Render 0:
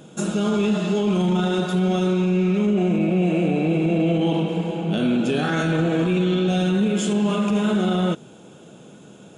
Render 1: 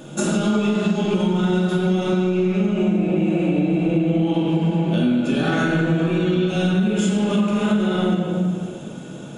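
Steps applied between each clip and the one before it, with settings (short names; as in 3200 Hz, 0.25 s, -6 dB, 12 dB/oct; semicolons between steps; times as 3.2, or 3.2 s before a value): shoebox room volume 1100 m³, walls mixed, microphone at 2.5 m; compressor 6:1, threshold -20 dBFS, peak gain reduction 13 dB; gain +3.5 dB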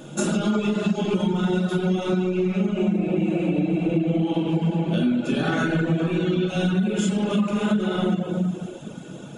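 reverb removal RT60 0.59 s; gain -1.5 dB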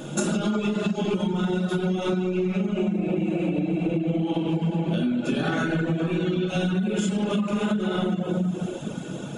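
compressor, threshold -26 dBFS, peak gain reduction 9.5 dB; gain +4.5 dB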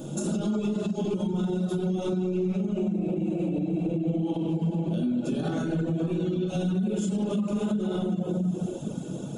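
bell 1900 Hz -14.5 dB 1.8 oct; limiter -20 dBFS, peak gain reduction 7 dB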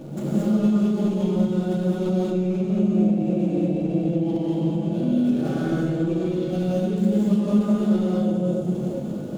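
median filter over 15 samples; non-linear reverb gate 0.25 s rising, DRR -3.5 dB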